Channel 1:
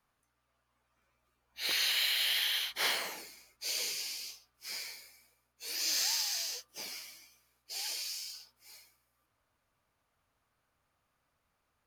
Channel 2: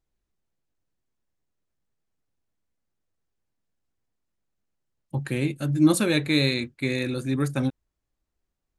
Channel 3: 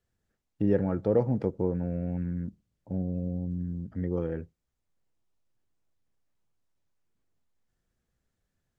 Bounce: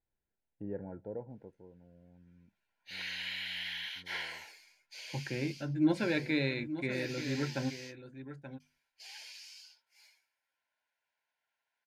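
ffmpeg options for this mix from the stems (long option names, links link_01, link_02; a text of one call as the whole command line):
ffmpeg -i stem1.wav -i stem2.wav -i stem3.wav -filter_complex "[0:a]acrossover=split=2700[link_01][link_02];[link_02]acompressor=threshold=-39dB:ratio=4:attack=1:release=60[link_03];[link_01][link_03]amix=inputs=2:normalize=0,bandpass=frequency=1900:width_type=q:width=0.66:csg=0,adelay=1300,volume=-2.5dB,asplit=3[link_04][link_05][link_06];[link_04]atrim=end=7.96,asetpts=PTS-STARTPTS,afade=type=out:start_time=7.956:duration=0.004:curve=hsin[link_07];[link_05]atrim=start=7.96:end=8.6,asetpts=PTS-STARTPTS,volume=0[link_08];[link_06]atrim=start=8.6,asetpts=PTS-STARTPTS,afade=type=in:duration=0.004:curve=hsin[link_09];[link_07][link_08][link_09]concat=n=3:v=0:a=1[link_10];[1:a]lowpass=2200,bandreject=frequency=50:width_type=h:width=6,bandreject=frequency=100:width_type=h:width=6,bandreject=frequency=150:width_type=h:width=6,bandreject=frequency=200:width_type=h:width=6,bandreject=frequency=250:width_type=h:width=6,volume=-4dB,asplit=2[link_11][link_12];[link_12]volume=-11.5dB[link_13];[2:a]lowpass=1400,volume=-10.5dB,afade=type=out:start_time=0.9:duration=0.71:silence=0.251189[link_14];[link_13]aecho=0:1:881:1[link_15];[link_10][link_11][link_14][link_15]amix=inputs=4:normalize=0,asuperstop=centerf=1200:order=12:qfactor=4.4,lowshelf=frequency=500:gain=-7" out.wav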